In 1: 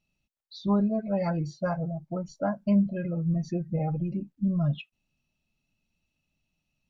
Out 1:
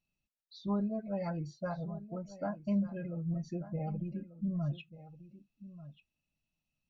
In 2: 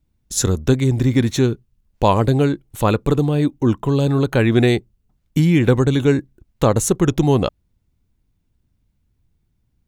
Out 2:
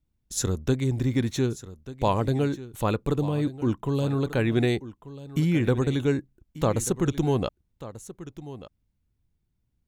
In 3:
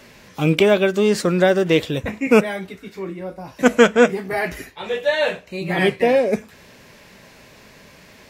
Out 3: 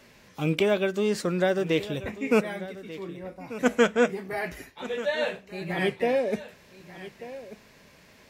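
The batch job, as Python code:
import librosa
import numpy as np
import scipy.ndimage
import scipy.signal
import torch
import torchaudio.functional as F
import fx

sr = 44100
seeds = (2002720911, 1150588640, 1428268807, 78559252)

y = x + 10.0 ** (-15.5 / 20.0) * np.pad(x, (int(1189 * sr / 1000.0), 0))[:len(x)]
y = F.gain(torch.from_numpy(y), -8.5).numpy()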